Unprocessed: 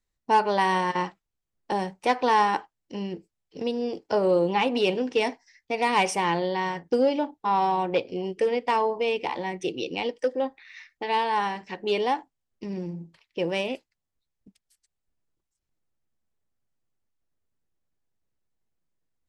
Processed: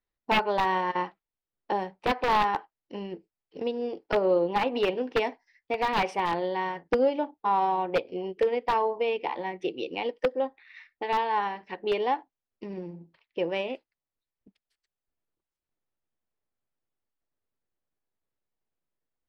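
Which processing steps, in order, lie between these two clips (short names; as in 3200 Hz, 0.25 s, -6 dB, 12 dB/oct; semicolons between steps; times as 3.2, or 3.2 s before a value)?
tone controls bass -9 dB, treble +8 dB; transient shaper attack +2 dB, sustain -2 dB; wrapped overs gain 13 dB; air absorption 380 m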